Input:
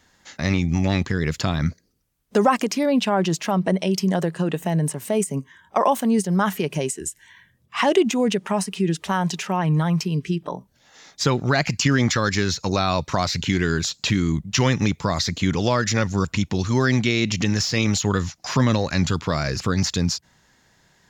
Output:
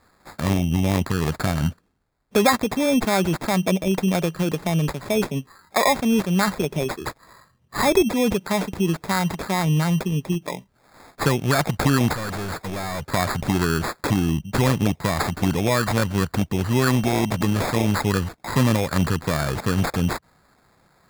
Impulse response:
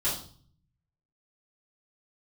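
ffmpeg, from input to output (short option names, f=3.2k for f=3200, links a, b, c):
-filter_complex "[0:a]acrusher=samples=15:mix=1:aa=0.000001,asettb=1/sr,asplit=3[a][b][c];[a]atrim=end=12.134[d];[b]atrim=start=12.13:end=13.05,asetpts=PTS-STARTPTS,afade=t=in:d=0.004:c=qsin,afade=t=out:st=0.916:d=0.004:c=qsin,volume=26.5dB,asoftclip=hard,volume=-26.5dB[e];[c]atrim=start=13.046[f];[d][e]acrossfade=d=0.004:c1=hsin:c2=qsin[g];[g][f]acrossfade=d=0.004:c1=qsin:c2=hsin"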